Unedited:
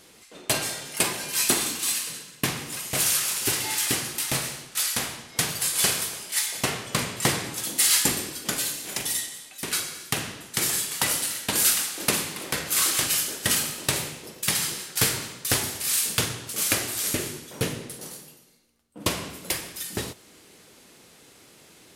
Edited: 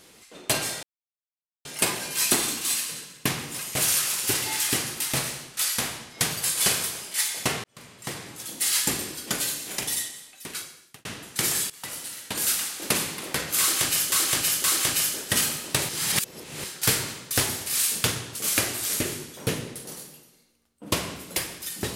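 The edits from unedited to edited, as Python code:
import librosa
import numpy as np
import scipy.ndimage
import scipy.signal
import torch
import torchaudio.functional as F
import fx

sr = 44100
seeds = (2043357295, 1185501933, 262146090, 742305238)

y = fx.edit(x, sr, fx.insert_silence(at_s=0.83, length_s=0.82),
    fx.fade_in_span(start_s=6.82, length_s=1.67),
    fx.fade_out_span(start_s=9.07, length_s=1.16),
    fx.fade_in_from(start_s=10.88, length_s=1.36, floor_db=-17.0),
    fx.repeat(start_s=12.78, length_s=0.52, count=3),
    fx.reverse_span(start_s=14.03, length_s=0.75), tone=tone)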